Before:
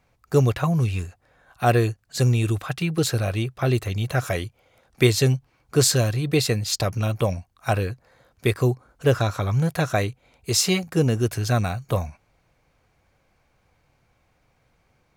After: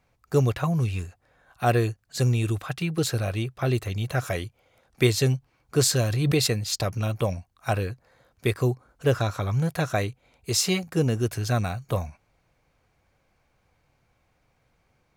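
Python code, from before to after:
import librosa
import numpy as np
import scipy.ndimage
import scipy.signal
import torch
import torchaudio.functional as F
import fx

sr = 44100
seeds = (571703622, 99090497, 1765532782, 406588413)

y = fx.pre_swell(x, sr, db_per_s=26.0, at=(5.98, 6.46), fade=0.02)
y = F.gain(torch.from_numpy(y), -3.0).numpy()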